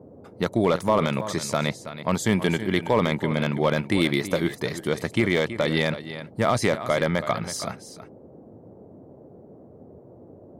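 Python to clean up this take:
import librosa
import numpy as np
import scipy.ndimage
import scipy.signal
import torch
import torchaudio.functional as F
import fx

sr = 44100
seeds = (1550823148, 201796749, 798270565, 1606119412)

y = fx.fix_declip(x, sr, threshold_db=-10.0)
y = fx.noise_reduce(y, sr, print_start_s=9.57, print_end_s=10.07, reduce_db=22.0)
y = fx.fix_echo_inverse(y, sr, delay_ms=325, level_db=-12.5)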